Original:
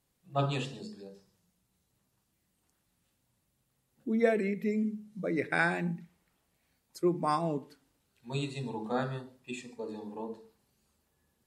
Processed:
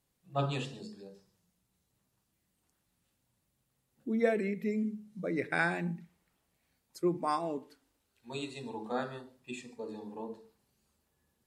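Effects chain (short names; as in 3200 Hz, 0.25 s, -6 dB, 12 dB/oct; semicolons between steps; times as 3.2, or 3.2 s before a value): 7.17–9.38 bell 150 Hz -12.5 dB 0.58 oct; gain -2 dB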